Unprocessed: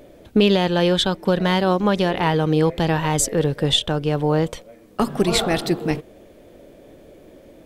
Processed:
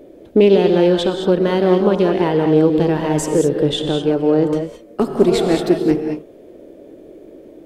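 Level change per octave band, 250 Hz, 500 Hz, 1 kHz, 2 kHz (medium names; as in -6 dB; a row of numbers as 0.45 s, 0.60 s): +5.0 dB, +6.5 dB, -1.0 dB, -3.0 dB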